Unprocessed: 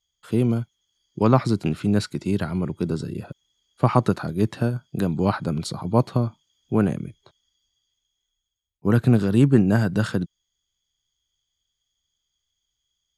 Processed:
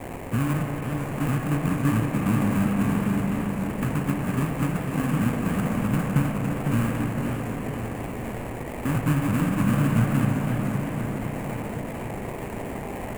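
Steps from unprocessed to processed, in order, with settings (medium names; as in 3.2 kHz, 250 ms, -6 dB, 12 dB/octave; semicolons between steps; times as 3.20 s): sawtooth pitch modulation +7 st, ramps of 320 ms; compression 6:1, threshold -22 dBFS, peak gain reduction 11.5 dB; brick-wall FIR band-stop 320–1400 Hz; de-hum 85.14 Hz, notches 39; word length cut 6-bit, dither triangular; bass shelf 150 Hz +8 dB; sample-rate reducer 1.4 kHz, jitter 20%; high-order bell 4.5 kHz -12.5 dB 1.1 oct; spring tank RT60 3.6 s, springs 35/45 ms, chirp 55 ms, DRR 4 dB; modulated delay 508 ms, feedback 57%, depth 104 cents, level -6.5 dB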